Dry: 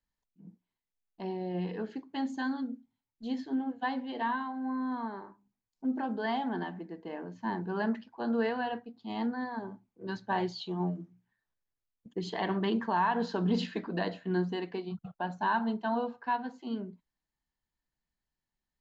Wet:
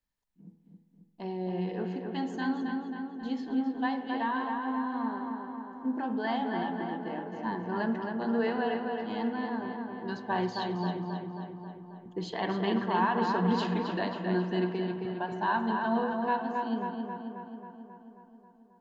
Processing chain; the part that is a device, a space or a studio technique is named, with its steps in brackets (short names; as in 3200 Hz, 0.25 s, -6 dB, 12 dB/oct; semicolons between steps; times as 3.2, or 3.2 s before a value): dub delay into a spring reverb (darkening echo 0.269 s, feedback 65%, low-pass 3400 Hz, level -4 dB; spring tank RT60 1.4 s, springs 43/49 ms, chirp 70 ms, DRR 10.5 dB)